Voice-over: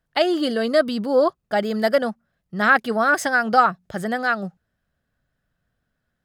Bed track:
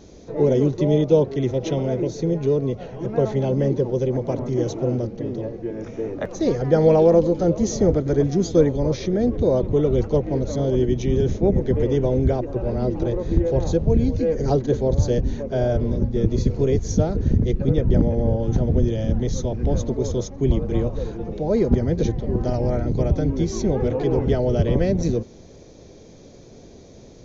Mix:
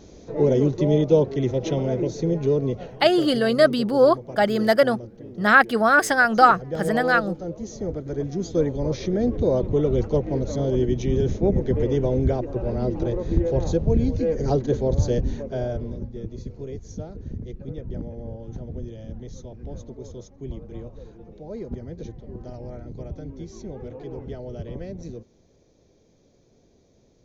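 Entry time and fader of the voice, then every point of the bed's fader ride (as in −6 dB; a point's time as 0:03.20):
2.85 s, +1.5 dB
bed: 0:02.83 −1 dB
0:03.10 −12.5 dB
0:07.70 −12.5 dB
0:09.07 −2 dB
0:15.30 −2 dB
0:16.33 −15 dB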